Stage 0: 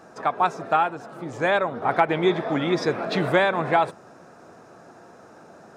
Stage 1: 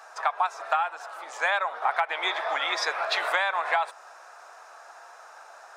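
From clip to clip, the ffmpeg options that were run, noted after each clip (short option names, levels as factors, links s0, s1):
-af "highpass=f=780:w=0.5412,highpass=f=780:w=1.3066,acompressor=threshold=0.0501:ratio=10,volume=1.78"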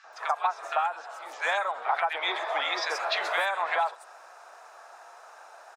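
-filter_complex "[0:a]acrossover=split=1500|5900[s0][s1][s2];[s0]adelay=40[s3];[s2]adelay=130[s4];[s3][s1][s4]amix=inputs=3:normalize=0"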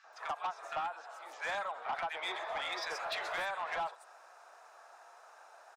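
-af "asoftclip=type=tanh:threshold=0.0794,volume=0.422"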